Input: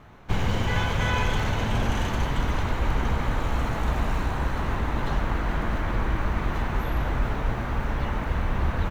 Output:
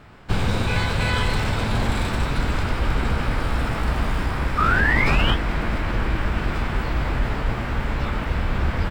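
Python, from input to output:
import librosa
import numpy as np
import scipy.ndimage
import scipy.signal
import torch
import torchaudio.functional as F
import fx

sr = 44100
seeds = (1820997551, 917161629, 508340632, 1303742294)

y = fx.spec_paint(x, sr, seeds[0], shape='rise', start_s=4.58, length_s=0.77, low_hz=940.0, high_hz=2600.0, level_db=-21.0)
y = fx.formant_shift(y, sr, semitones=4)
y = y * librosa.db_to_amplitude(2.5)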